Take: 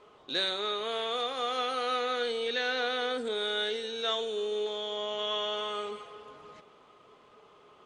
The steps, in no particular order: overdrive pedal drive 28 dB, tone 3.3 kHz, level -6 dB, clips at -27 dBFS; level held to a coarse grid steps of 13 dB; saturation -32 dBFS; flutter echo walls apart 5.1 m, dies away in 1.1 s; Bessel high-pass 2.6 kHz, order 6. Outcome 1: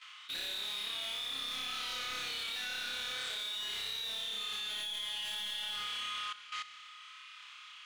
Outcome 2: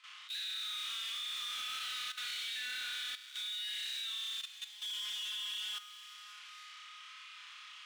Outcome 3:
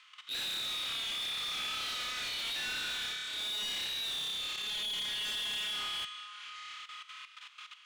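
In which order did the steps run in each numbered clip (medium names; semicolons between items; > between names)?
saturation > Bessel high-pass > overdrive pedal > flutter echo > level held to a coarse grid; flutter echo > overdrive pedal > Bessel high-pass > level held to a coarse grid > saturation; saturation > flutter echo > level held to a coarse grid > Bessel high-pass > overdrive pedal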